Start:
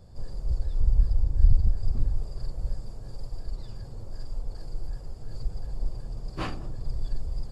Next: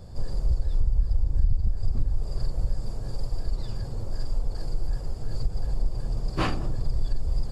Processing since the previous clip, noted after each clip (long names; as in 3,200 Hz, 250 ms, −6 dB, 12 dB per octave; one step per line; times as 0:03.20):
downward compressor 4 to 1, threshold −26 dBFS, peak gain reduction 13.5 dB
level +7.5 dB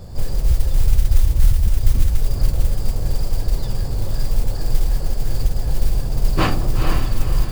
feedback delay with all-pass diffusion 468 ms, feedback 40%, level −5 dB
noise that follows the level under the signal 26 dB
level +7.5 dB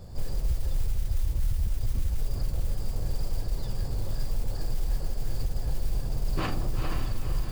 brickwall limiter −11 dBFS, peak gain reduction 9.5 dB
level −8 dB